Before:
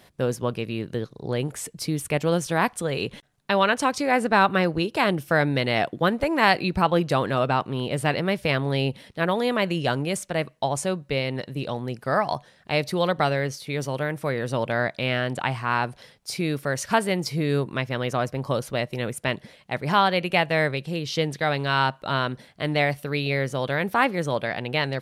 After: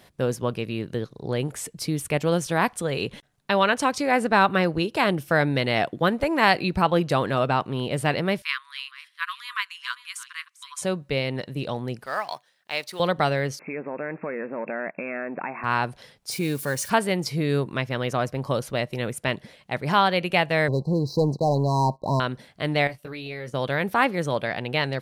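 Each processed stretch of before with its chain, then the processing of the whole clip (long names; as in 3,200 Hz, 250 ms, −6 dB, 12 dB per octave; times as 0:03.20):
0:08.42–0:10.82: delay that plays each chunk backwards 329 ms, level −11 dB + linear-phase brick-wall high-pass 980 Hz + expander for the loud parts, over −38 dBFS
0:12.06–0:13.00: mu-law and A-law mismatch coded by A + high-pass filter 1,400 Hz 6 dB per octave
0:13.59–0:15.64: leveller curve on the samples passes 2 + downward compressor 5 to 1, threshold −27 dBFS + linear-phase brick-wall band-pass 160–2,700 Hz
0:16.31–0:16.90: spike at every zero crossing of −32.5 dBFS + parametric band 10,000 Hz +3.5 dB 0.96 octaves + notch comb filter 660 Hz
0:20.68–0:22.20: head-to-tape spacing loss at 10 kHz 27 dB + leveller curve on the samples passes 2 + linear-phase brick-wall band-stop 1,100–3,900 Hz
0:22.87–0:23.54: noise gate −33 dBFS, range −14 dB + downward compressor 3 to 1, threshold −34 dBFS + double-tracking delay 17 ms −6 dB
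whole clip: no processing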